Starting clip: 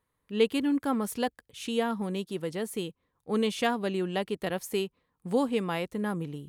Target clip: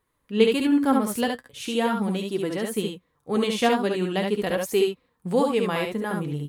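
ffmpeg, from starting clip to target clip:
-af "flanger=delay=2.5:depth=6.4:regen=58:speed=0.42:shape=triangular,aecho=1:1:55|70:0.251|0.631,volume=8.5dB"

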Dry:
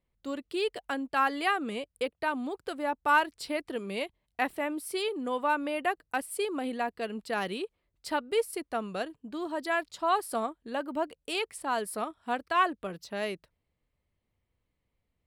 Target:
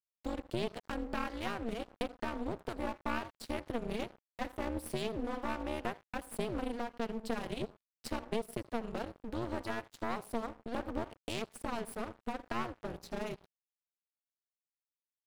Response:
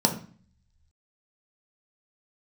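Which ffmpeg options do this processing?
-filter_complex "[0:a]equalizer=f=93:t=o:w=2.9:g=-6,acompressor=threshold=-46dB:ratio=2.5,asplit=2[a][b];[1:a]atrim=start_sample=2205,adelay=79[c];[b][c]afir=irnorm=-1:irlink=0,volume=-31dB[d];[a][d]amix=inputs=2:normalize=0,tremolo=f=230:d=1,aeval=exprs='clip(val(0),-1,0.00335)':c=same,tiltshelf=f=630:g=4.5,aeval=exprs='sgn(val(0))*max(abs(val(0))-0.001,0)':c=same,volume=13dB"

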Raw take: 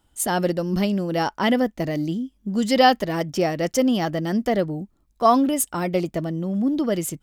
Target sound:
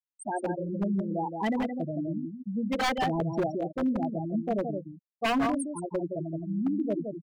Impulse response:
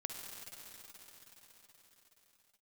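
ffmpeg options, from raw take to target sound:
-filter_complex "[0:a]asettb=1/sr,asplit=3[a][b][c];[a]atrim=end=2.884[d];[b]atrim=start=2.88:end=3.44,asetpts=PTS-STARTPTS,afade=t=in:d=0.004:c=qsin,afade=t=out:st=0.556:d=0.004:c=qsin,aeval=exprs='val(0)+0.5*0.0708*sgn(val(0))':c=same[e];[c]atrim=start=3.436[f];[d][e]acrossfade=d=0.004:c1=hsin:c2=qsin[g];[g][f]acrossfade=d=0.004:c1=qsin:c2=hsin,bandreject=f=60:t=h:w=6,bandreject=f=120:t=h:w=6,bandreject=f=180:t=h:w=6,bandreject=f=240:t=h:w=6,afftfilt=real='re*gte(hypot(re,im),0.282)':imag='im*gte(hypot(re,im),0.282)':win_size=1024:overlap=0.75,aecho=1:1:169:0.501,aeval=exprs='0.2*(abs(mod(val(0)/0.2+3,4)-2)-1)':c=same,bandreject=f=510:w=12,volume=-6.5dB"

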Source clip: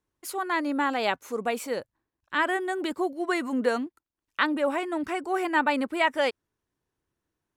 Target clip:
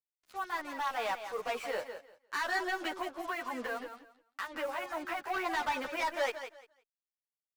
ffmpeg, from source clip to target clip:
-filter_complex "[0:a]lowpass=10k,acrossover=split=550 3400:gain=0.0708 1 0.112[a][b][c];[a][b][c]amix=inputs=3:normalize=0,dynaudnorm=f=280:g=9:m=12dB,alimiter=limit=-10.5dB:level=0:latency=1:release=170,asettb=1/sr,asplit=3[d][e][f];[d]atrim=end=2.864[g];[e]atrim=start=2.86:end=5.27,asetpts=PTS-STARTPTS,afade=t=in:d=0.004:c=qsin,afade=t=out:st=2.406:d=0.004:c=qsin,acompressor=threshold=-26dB:ratio=6[h];[f]atrim=start=5.266[i];[g][h]acrossfade=d=0.004:c1=hsin:c2=qsin[j];[j][i]acrossfade=d=0.004:c1=qsin:c2=hsin,acrusher=bits=6:mix=0:aa=0.5,asoftclip=type=tanh:threshold=-23dB,aecho=1:1:173|346|519:0.335|0.067|0.0134,asplit=2[k][l];[l]adelay=10.7,afreqshift=-3[m];[k][m]amix=inputs=2:normalize=1,volume=-2.5dB"

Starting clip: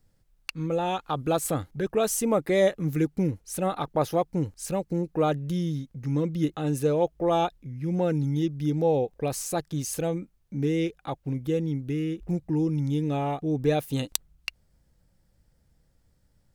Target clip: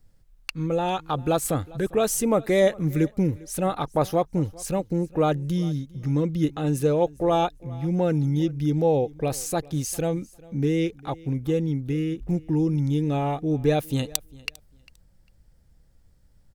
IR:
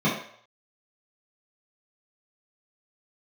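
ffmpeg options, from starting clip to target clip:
-filter_complex "[0:a]lowshelf=f=61:g=9,asplit=2[a][b];[b]aecho=0:1:400|800:0.075|0.0135[c];[a][c]amix=inputs=2:normalize=0,volume=2dB"

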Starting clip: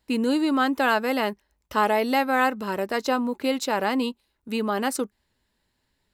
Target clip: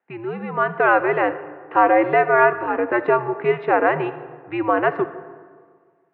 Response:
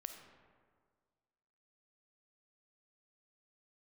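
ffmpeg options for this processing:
-filter_complex "[0:a]dynaudnorm=f=110:g=13:m=8.5dB,asplit=2[a][b];[1:a]atrim=start_sample=2205[c];[b][c]afir=irnorm=-1:irlink=0,volume=3dB[d];[a][d]amix=inputs=2:normalize=0,highpass=f=420:t=q:w=0.5412,highpass=f=420:t=q:w=1.307,lowpass=f=2.3k:t=q:w=0.5176,lowpass=f=2.3k:t=q:w=0.7071,lowpass=f=2.3k:t=q:w=1.932,afreqshift=-110,volume=-4.5dB"

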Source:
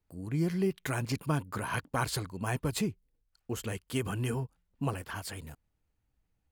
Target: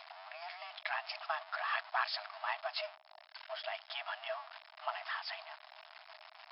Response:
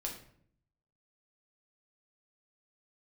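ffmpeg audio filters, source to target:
-af "aeval=exprs='val(0)+0.5*0.0158*sgn(val(0))':c=same,afftfilt=real='re*between(b*sr/4096,420,5200)':imag='im*between(b*sr/4096,420,5200)':win_size=4096:overlap=0.75,afreqshift=190,volume=-2.5dB"

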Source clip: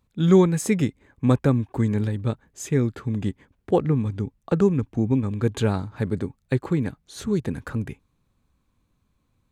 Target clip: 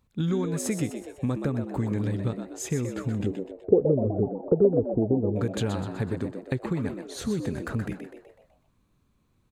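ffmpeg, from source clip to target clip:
-filter_complex "[0:a]acompressor=threshold=-24dB:ratio=10,asettb=1/sr,asplit=3[a][b][c];[a]atrim=end=3.264[d];[b]atrim=start=3.26:end=5.36,asetpts=PTS-STARTPTS,afade=t=in:d=0.004:c=qsin,afade=t=out:st=2.096:d=0.004:c=qsin,lowpass=f=440:t=q:w=4.7[e];[c]atrim=start=5.356[f];[d][e]acrossfade=d=0.004:c1=hsin:c2=qsin[g];[g][f]acrossfade=d=0.004:c1=qsin:c2=hsin,asplit=7[h][i][j][k][l][m][n];[i]adelay=125,afreqshift=86,volume=-8dB[o];[j]adelay=250,afreqshift=172,volume=-14.4dB[p];[k]adelay=375,afreqshift=258,volume=-20.8dB[q];[l]adelay=500,afreqshift=344,volume=-27.1dB[r];[m]adelay=625,afreqshift=430,volume=-33.5dB[s];[n]adelay=750,afreqshift=516,volume=-39.9dB[t];[h][o][p][q][r][s][t]amix=inputs=7:normalize=0"

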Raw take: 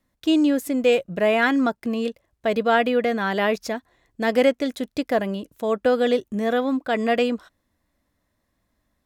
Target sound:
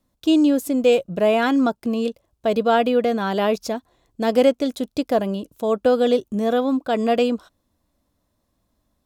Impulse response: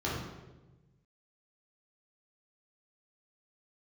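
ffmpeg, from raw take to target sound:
-af "equalizer=f=1.9k:t=o:w=0.64:g=-11,volume=2.5dB"

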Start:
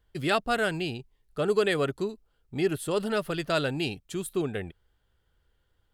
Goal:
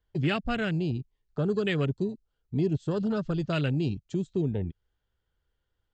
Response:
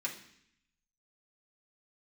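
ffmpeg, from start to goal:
-filter_complex "[0:a]aresample=16000,aresample=44100,afwtdn=0.0251,acrossover=split=230|3000[a][b][c];[b]acompressor=threshold=-48dB:ratio=2.5[d];[a][d][c]amix=inputs=3:normalize=0,volume=8.5dB"

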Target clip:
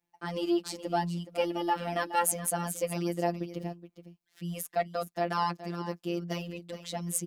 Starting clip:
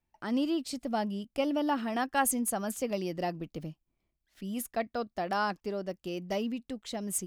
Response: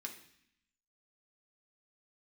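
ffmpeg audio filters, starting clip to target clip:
-af "highpass=130,aecho=1:1:421:0.224,afftfilt=real='hypot(re,im)*cos(PI*b)':imag='0':win_size=1024:overlap=0.75,volume=4.5dB"

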